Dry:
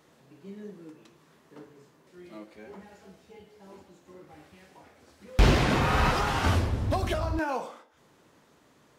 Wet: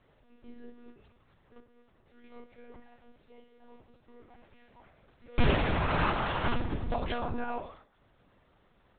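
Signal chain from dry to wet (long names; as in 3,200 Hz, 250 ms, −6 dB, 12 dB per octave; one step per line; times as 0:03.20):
0:01.59–0:02.24: downward compressor 3 to 1, threshold −52 dBFS, peak gain reduction 7 dB
one-pitch LPC vocoder at 8 kHz 240 Hz
level −4 dB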